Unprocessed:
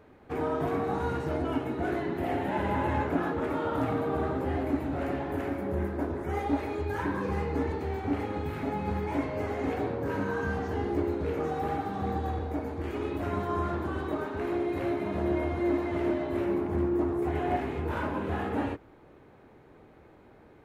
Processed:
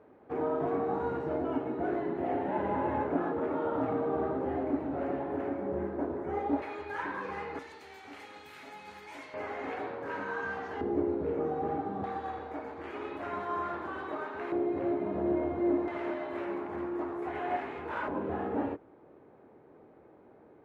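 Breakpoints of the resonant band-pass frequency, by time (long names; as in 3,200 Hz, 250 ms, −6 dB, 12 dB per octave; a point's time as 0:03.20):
resonant band-pass, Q 0.63
520 Hz
from 0:06.62 1,600 Hz
from 0:07.59 5,400 Hz
from 0:09.34 1,500 Hz
from 0:10.81 410 Hz
from 0:12.04 1,300 Hz
from 0:14.52 440 Hz
from 0:15.88 1,300 Hz
from 0:18.08 470 Hz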